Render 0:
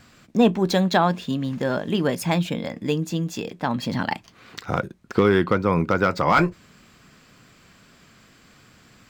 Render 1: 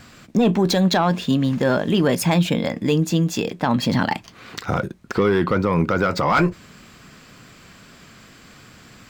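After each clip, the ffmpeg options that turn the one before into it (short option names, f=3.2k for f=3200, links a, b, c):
-af "acontrast=74,alimiter=limit=-10dB:level=0:latency=1:release=26"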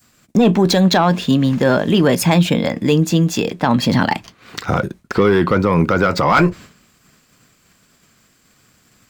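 -filter_complex "[0:a]agate=range=-33dB:threshold=-35dB:ratio=3:detection=peak,acrossover=split=560|6900[a][b][c];[c]acompressor=mode=upward:threshold=-54dB:ratio=2.5[d];[a][b][d]amix=inputs=3:normalize=0,volume=4.5dB"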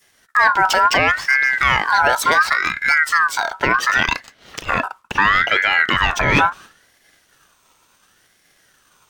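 -af "aeval=exprs='val(0)*sin(2*PI*1500*n/s+1500*0.25/0.71*sin(2*PI*0.71*n/s))':c=same,volume=1dB"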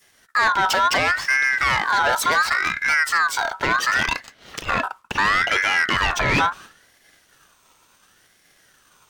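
-af "asoftclip=type=tanh:threshold=-13dB"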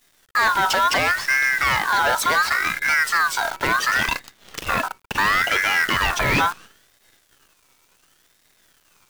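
-af "acrusher=bits=6:dc=4:mix=0:aa=0.000001"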